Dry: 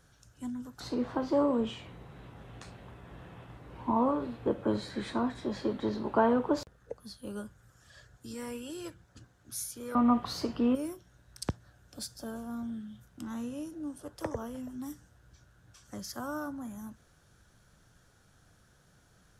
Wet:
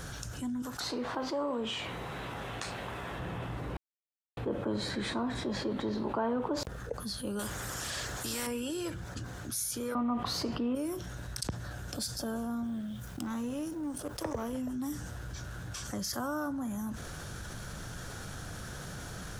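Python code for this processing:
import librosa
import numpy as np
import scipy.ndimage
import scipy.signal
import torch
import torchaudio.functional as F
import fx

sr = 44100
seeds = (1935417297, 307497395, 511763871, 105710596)

y = fx.low_shelf(x, sr, hz=380.0, db=-12.0, at=(0.62, 3.19))
y = fx.spectral_comp(y, sr, ratio=2.0, at=(7.39, 8.47))
y = fx.law_mismatch(y, sr, coded='A', at=(12.64, 14.53))
y = fx.edit(y, sr, fx.silence(start_s=3.77, length_s=0.6), tone=tone)
y = fx.env_flatten(y, sr, amount_pct=70)
y = F.gain(torch.from_numpy(y), -8.0).numpy()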